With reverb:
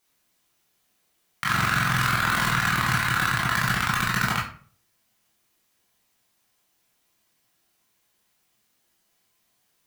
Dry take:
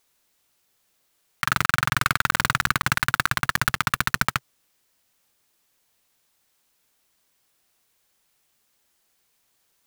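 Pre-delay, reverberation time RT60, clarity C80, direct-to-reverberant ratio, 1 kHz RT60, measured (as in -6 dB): 16 ms, 0.45 s, 10.5 dB, -5.5 dB, 0.40 s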